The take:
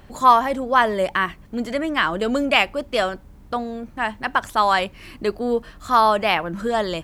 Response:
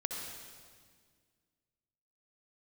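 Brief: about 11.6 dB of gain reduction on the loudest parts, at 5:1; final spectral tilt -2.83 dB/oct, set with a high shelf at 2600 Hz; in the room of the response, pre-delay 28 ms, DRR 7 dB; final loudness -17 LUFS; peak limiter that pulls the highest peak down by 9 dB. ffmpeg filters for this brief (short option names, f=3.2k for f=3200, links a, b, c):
-filter_complex "[0:a]highshelf=f=2.6k:g=3,acompressor=threshold=-20dB:ratio=5,alimiter=limit=-17dB:level=0:latency=1,asplit=2[a][b];[1:a]atrim=start_sample=2205,adelay=28[c];[b][c]afir=irnorm=-1:irlink=0,volume=-9dB[d];[a][d]amix=inputs=2:normalize=0,volume=10.5dB"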